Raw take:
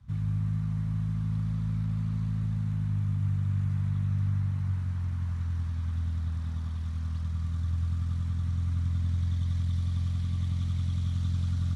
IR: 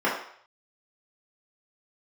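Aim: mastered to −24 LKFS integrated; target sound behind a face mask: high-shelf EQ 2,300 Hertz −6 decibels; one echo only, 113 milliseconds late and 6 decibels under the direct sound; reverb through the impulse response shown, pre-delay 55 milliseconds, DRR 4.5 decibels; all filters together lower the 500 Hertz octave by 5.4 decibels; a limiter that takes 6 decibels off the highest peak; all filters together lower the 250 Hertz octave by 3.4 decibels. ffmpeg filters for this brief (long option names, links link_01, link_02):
-filter_complex "[0:a]equalizer=frequency=250:width_type=o:gain=-6.5,equalizer=frequency=500:width_type=o:gain=-5,alimiter=level_in=3.5dB:limit=-24dB:level=0:latency=1,volume=-3.5dB,aecho=1:1:113:0.501,asplit=2[link_01][link_02];[1:a]atrim=start_sample=2205,adelay=55[link_03];[link_02][link_03]afir=irnorm=-1:irlink=0,volume=-20.5dB[link_04];[link_01][link_04]amix=inputs=2:normalize=0,highshelf=frequency=2300:gain=-6,volume=8.5dB"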